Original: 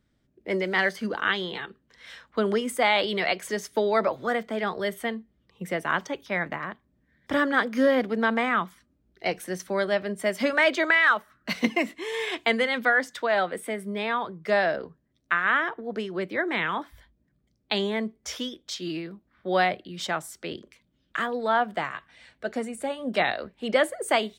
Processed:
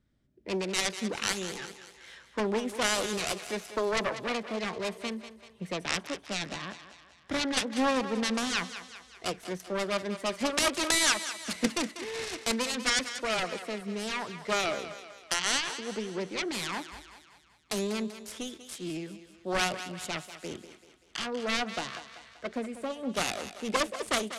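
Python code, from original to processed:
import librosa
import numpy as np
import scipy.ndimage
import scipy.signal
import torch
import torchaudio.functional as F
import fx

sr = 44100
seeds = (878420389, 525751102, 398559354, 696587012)

y = fx.self_delay(x, sr, depth_ms=0.69)
y = scipy.signal.sosfilt(scipy.signal.butter(4, 11000.0, 'lowpass', fs=sr, output='sos'), y)
y = fx.low_shelf(y, sr, hz=220.0, db=4.5)
y = fx.echo_thinned(y, sr, ms=193, feedback_pct=52, hz=290.0, wet_db=-11.5)
y = F.gain(torch.from_numpy(y), -5.0).numpy()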